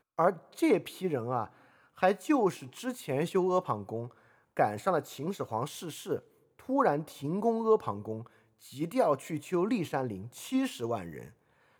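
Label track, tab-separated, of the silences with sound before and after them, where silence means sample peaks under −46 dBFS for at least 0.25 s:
1.470000	1.980000	silence
4.110000	4.570000	silence
6.190000	6.590000	silence
8.270000	8.630000	silence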